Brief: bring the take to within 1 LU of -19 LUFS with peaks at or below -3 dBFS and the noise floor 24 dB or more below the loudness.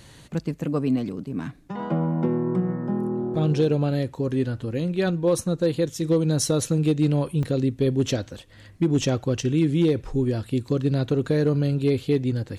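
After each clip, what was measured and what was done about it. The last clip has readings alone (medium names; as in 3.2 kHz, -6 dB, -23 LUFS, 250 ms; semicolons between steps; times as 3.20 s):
clipped samples 0.3%; clipping level -13.0 dBFS; dropouts 1; longest dropout 3.3 ms; loudness -24.0 LUFS; peak level -13.0 dBFS; loudness target -19.0 LUFS
-> clip repair -13 dBFS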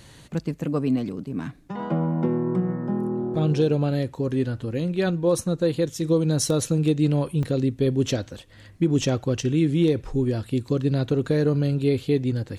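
clipped samples 0.0%; dropouts 1; longest dropout 3.3 ms
-> interpolate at 7.43 s, 3.3 ms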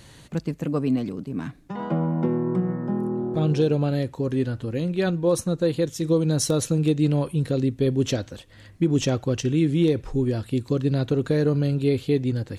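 dropouts 0; loudness -24.0 LUFS; peak level -8.5 dBFS; loudness target -19.0 LUFS
-> trim +5 dB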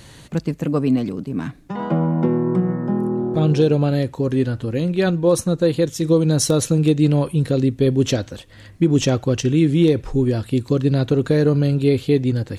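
loudness -19.0 LUFS; peak level -3.5 dBFS; noise floor -44 dBFS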